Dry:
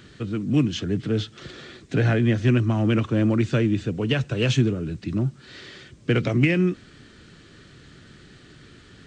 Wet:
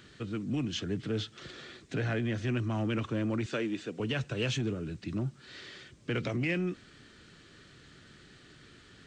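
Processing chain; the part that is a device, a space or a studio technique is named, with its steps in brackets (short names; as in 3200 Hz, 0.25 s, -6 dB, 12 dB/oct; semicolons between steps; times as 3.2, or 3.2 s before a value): 3.46–4 HPF 270 Hz 12 dB/oct; soft clipper into limiter (soft clip -9 dBFS, distortion -25 dB; limiter -16.5 dBFS, peak gain reduction 6 dB); low shelf 420 Hz -5 dB; gain -4.5 dB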